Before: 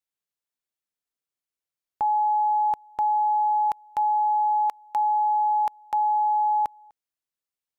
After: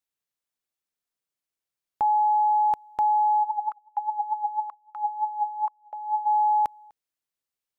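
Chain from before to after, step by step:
0:03.43–0:06.25: LFO wah 6 Hz → 1.7 Hz 530–1,300 Hz, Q 5.8
level +1 dB

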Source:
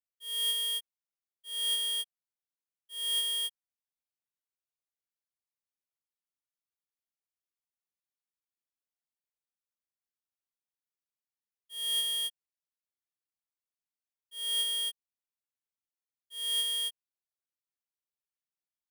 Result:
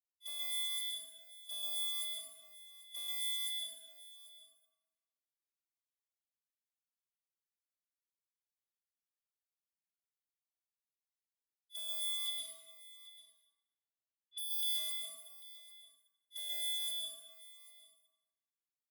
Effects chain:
high-pass filter 1,400 Hz 6 dB per octave
noise gate −42 dBFS, range −32 dB
0:12.26–0:14.63: low-pass filter 3,500 Hz 24 dB per octave
comb filter 6.4 ms, depth 81%
downward compressor 4 to 1, threshold −47 dBFS, peak gain reduction 18 dB
sine wavefolder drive 14 dB, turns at −39 dBFS
frequency shifter +200 Hz
single-tap delay 793 ms −18 dB
dense smooth reverb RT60 1.4 s, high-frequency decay 0.6×, pre-delay 110 ms, DRR −3 dB
phaser whose notches keep moving one way falling 0.39 Hz
level +1 dB

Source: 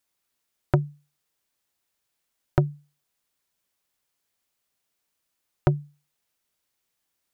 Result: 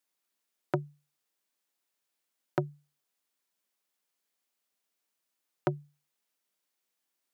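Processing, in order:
high-pass filter 180 Hz 24 dB per octave
level −4.5 dB

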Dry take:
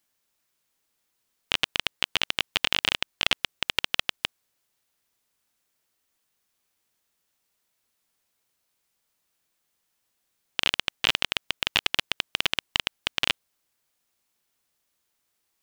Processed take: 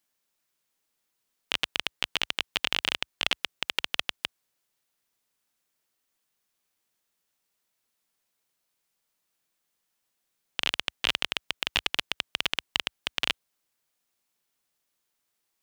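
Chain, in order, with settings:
parametric band 62 Hz −14 dB 0.58 octaves
level −3 dB

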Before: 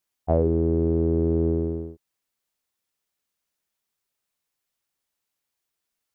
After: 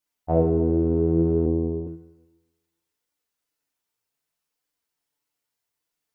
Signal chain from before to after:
feedback delay network reverb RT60 1.2 s, low-frequency decay 0.85×, high-frequency decay 0.6×, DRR −2 dB
flanger 0.64 Hz, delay 3.4 ms, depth 5.6 ms, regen +61%
0:01.46–0:01.87: Butterworth low-pass 1,100 Hz 72 dB per octave

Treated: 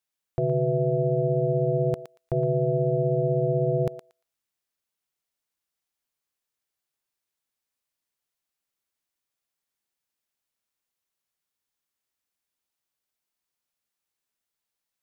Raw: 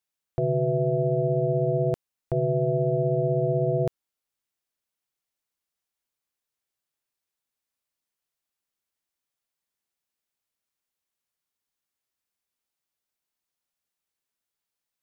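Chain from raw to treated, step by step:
feedback echo with a high-pass in the loop 116 ms, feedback 19%, high-pass 970 Hz, level −7.5 dB

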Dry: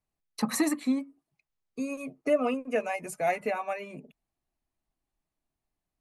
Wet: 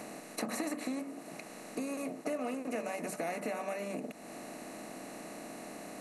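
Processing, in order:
compressor on every frequency bin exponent 0.4
downward compressor 2.5 to 1, threshold −43 dBFS, peak gain reduction 17 dB
level +1.5 dB

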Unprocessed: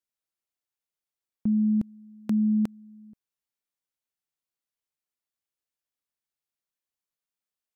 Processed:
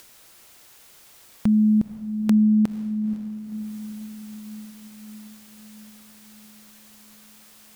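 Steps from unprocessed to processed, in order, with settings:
upward compression, threshold −29 dBFS
feedback delay with all-pass diffusion 499 ms, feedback 61%, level −13 dB
level +5.5 dB

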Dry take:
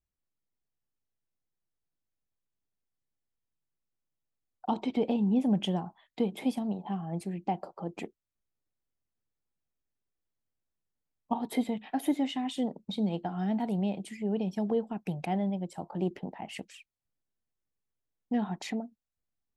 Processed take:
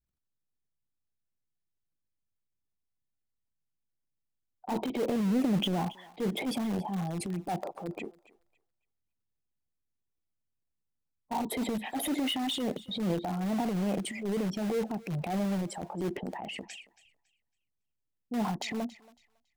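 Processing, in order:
spectral envelope exaggerated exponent 1.5
transient designer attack −8 dB, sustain +8 dB
in parallel at −11 dB: wrap-around overflow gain 29 dB
on the sum: feedback echo with a high-pass in the loop 277 ms, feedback 25%, high-pass 740 Hz, level −18 dB

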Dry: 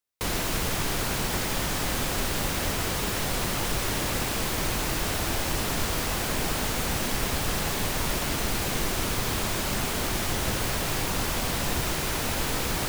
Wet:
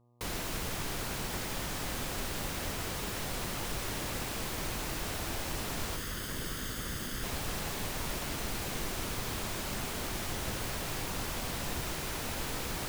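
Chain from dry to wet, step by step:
0:05.96–0:07.24: lower of the sound and its delayed copy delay 0.61 ms
hum with harmonics 120 Hz, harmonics 10, −58 dBFS −6 dB per octave
level −8.5 dB

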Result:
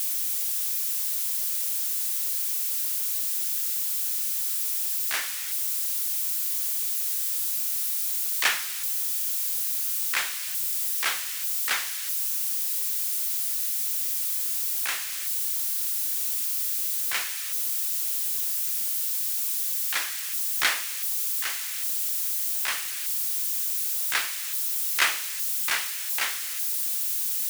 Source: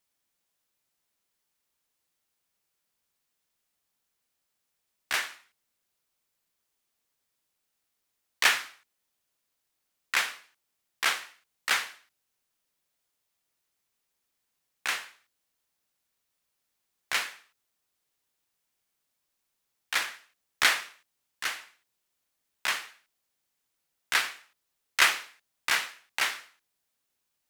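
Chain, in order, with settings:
spike at every zero crossing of −22.5 dBFS
level −1.5 dB

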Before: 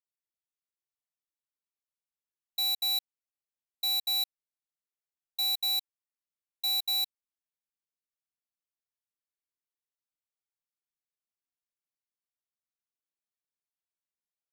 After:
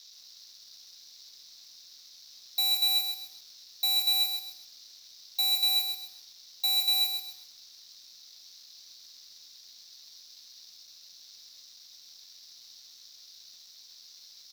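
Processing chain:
high-shelf EQ 9,100 Hz +2.5 dB
double-tracking delay 24 ms −8 dB
noise in a band 3,700–5,900 Hz −58 dBFS
leveller curve on the samples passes 2
feedback echo at a low word length 131 ms, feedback 35%, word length 9 bits, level −6 dB

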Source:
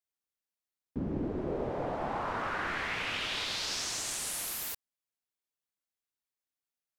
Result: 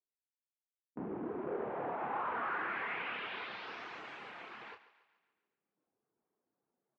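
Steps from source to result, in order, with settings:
noise gate with hold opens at −28 dBFS
reverb reduction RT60 0.75 s
low-pass that shuts in the quiet parts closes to 450 Hz
reversed playback
upward compression, threshold −52 dBFS
reversed playback
soft clipping −34 dBFS, distortion −13 dB
loudspeaker in its box 260–2,300 Hz, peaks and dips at 280 Hz −4 dB, 590 Hz −6 dB, 1,900 Hz −3 dB
double-tracking delay 29 ms −7.5 dB
on a send: feedback echo with a high-pass in the loop 141 ms, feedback 53%, high-pass 380 Hz, level −14.5 dB
on the sum: level +3 dB

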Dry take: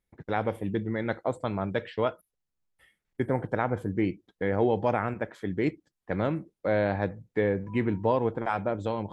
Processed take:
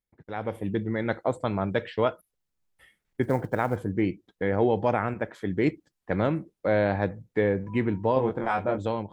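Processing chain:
0:08.14–0:08.78: double-tracking delay 23 ms −3 dB
automatic gain control gain up to 14.5 dB
0:03.23–0:03.77: floating-point word with a short mantissa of 4 bits
level −9 dB

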